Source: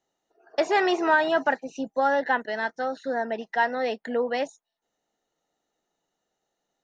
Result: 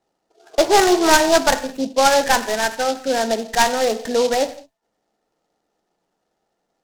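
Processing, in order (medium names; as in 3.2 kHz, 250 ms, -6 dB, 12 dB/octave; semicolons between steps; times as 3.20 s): tracing distortion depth 0.16 ms; low-pass 2 kHz 12 dB/octave; gated-style reverb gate 230 ms falling, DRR 8.5 dB; delay time shaken by noise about 4.3 kHz, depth 0.064 ms; trim +8 dB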